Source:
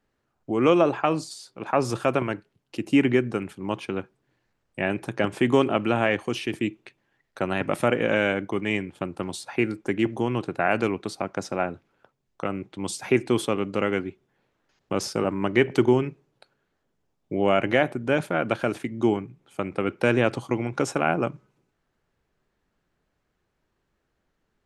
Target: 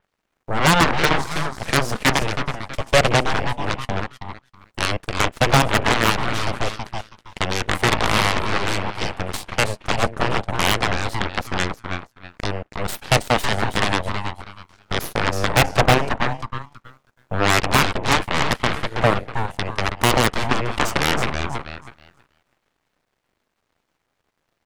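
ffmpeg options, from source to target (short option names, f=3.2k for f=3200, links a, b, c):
-filter_complex "[0:a]highpass=66,acompressor=mode=upward:threshold=-35dB:ratio=2.5,asplit=6[a][b][c][d][e][f];[b]adelay=322,afreqshift=110,volume=-6dB[g];[c]adelay=644,afreqshift=220,volume=-14.4dB[h];[d]adelay=966,afreqshift=330,volume=-22.8dB[i];[e]adelay=1288,afreqshift=440,volume=-31.2dB[j];[f]adelay=1610,afreqshift=550,volume=-39.6dB[k];[a][g][h][i][j][k]amix=inputs=6:normalize=0,aeval=exprs='abs(val(0))':c=same,aeval=exprs='0.355*(cos(1*acos(clip(val(0)/0.355,-1,1)))-cos(1*PI/2))+0.00794*(cos(3*acos(clip(val(0)/0.355,-1,1)))-cos(3*PI/2))+0.0447*(cos(7*acos(clip(val(0)/0.355,-1,1)))-cos(7*PI/2))+0.1*(cos(8*acos(clip(val(0)/0.355,-1,1)))-cos(8*PI/2))':c=same,adynamicequalizer=threshold=0.0126:dfrequency=4000:dqfactor=0.7:tfrequency=4000:tqfactor=0.7:attack=5:release=100:ratio=0.375:range=2.5:mode=cutabove:tftype=highshelf,volume=5.5dB"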